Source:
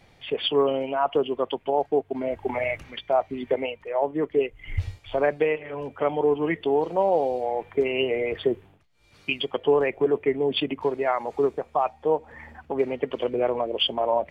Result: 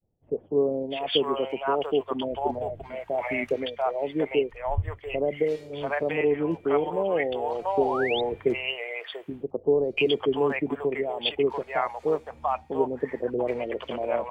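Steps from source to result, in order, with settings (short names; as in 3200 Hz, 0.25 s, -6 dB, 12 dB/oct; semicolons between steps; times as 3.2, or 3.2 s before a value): expander -44 dBFS; bands offset in time lows, highs 0.69 s, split 640 Hz; painted sound rise, 7.8–8.21, 560–3900 Hz -31 dBFS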